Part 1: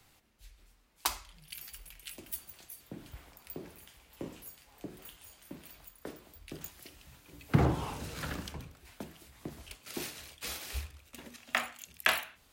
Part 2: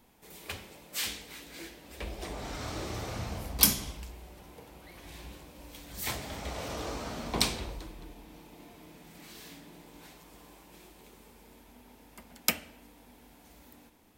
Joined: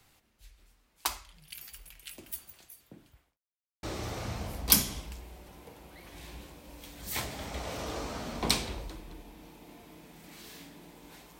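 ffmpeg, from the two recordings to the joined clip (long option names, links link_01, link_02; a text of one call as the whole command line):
ffmpeg -i cue0.wav -i cue1.wav -filter_complex "[0:a]apad=whole_dur=11.39,atrim=end=11.39,asplit=2[link_01][link_02];[link_01]atrim=end=3.38,asetpts=PTS-STARTPTS,afade=type=out:start_time=2.41:duration=0.97[link_03];[link_02]atrim=start=3.38:end=3.83,asetpts=PTS-STARTPTS,volume=0[link_04];[1:a]atrim=start=2.74:end=10.3,asetpts=PTS-STARTPTS,afade=type=in:duration=0.004:curve=hsin[link_05];[link_03][link_04][link_05]concat=n=3:v=0:a=1" out.wav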